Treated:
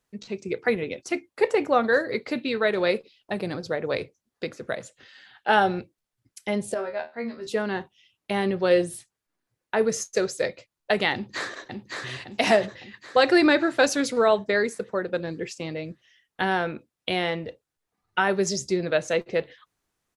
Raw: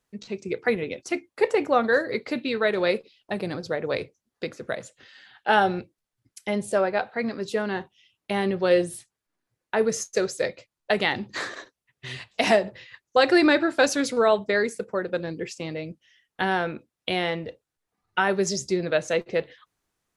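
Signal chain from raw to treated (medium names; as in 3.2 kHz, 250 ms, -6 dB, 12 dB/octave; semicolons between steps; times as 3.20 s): 6.74–7.47 s: feedback comb 78 Hz, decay 0.23 s, harmonics all, mix 100%; 11.13–12.09 s: echo throw 560 ms, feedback 55%, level -3.5 dB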